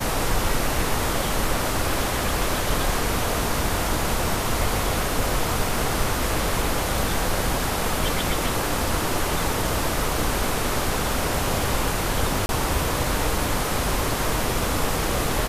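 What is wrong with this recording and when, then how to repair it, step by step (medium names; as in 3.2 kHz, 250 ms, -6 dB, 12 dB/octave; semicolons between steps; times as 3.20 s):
12.46–12.49 s: dropout 31 ms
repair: interpolate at 12.46 s, 31 ms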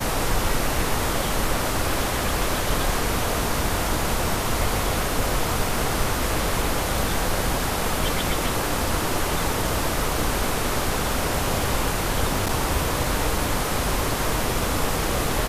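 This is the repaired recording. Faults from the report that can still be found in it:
nothing left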